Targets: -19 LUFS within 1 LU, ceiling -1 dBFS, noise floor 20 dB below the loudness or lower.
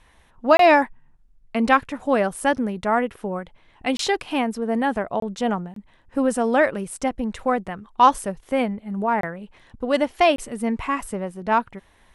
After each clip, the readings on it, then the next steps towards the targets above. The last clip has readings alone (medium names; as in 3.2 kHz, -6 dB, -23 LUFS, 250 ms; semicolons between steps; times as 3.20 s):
dropouts 6; longest dropout 23 ms; loudness -22.0 LUFS; peak level -3.0 dBFS; loudness target -19.0 LUFS
-> interpolate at 0.57/3.97/5.20/5.74/9.21/10.36 s, 23 ms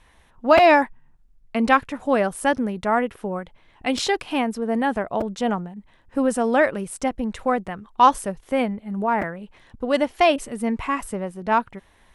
dropouts 0; loudness -22.0 LUFS; peak level -3.0 dBFS; loudness target -19.0 LUFS
-> trim +3 dB; peak limiter -1 dBFS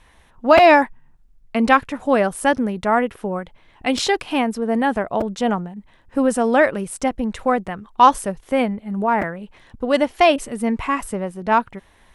loudness -19.0 LUFS; peak level -1.0 dBFS; noise floor -54 dBFS